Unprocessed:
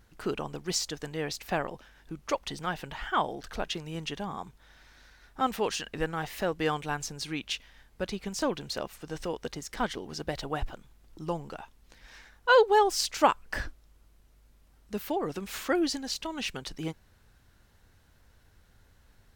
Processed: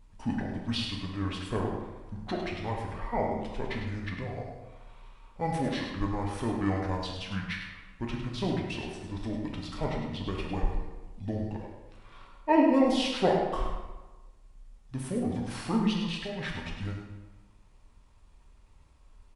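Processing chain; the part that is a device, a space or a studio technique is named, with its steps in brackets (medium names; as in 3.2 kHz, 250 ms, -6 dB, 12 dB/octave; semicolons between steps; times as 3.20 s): monster voice (pitch shift -8 st; bass shelf 160 Hz +8 dB; delay 103 ms -8 dB; reverberation RT60 1.2 s, pre-delay 4 ms, DRR -0.5 dB); trim -5 dB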